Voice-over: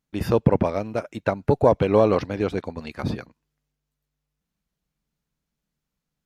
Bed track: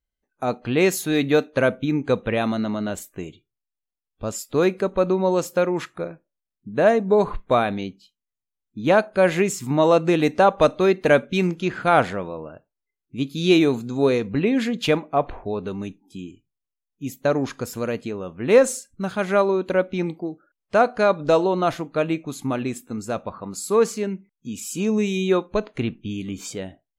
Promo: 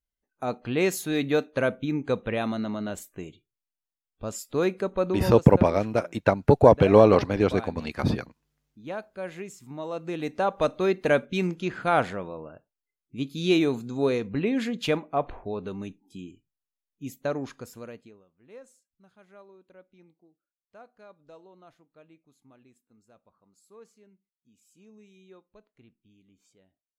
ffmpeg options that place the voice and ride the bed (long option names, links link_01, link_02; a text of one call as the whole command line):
ffmpeg -i stem1.wav -i stem2.wav -filter_complex "[0:a]adelay=5000,volume=2dB[link_01];[1:a]volume=7dB,afade=type=out:start_time=5.04:duration=0.42:silence=0.237137,afade=type=in:start_time=9.9:duration=1.04:silence=0.237137,afade=type=out:start_time=16.89:duration=1.37:silence=0.0446684[link_02];[link_01][link_02]amix=inputs=2:normalize=0" out.wav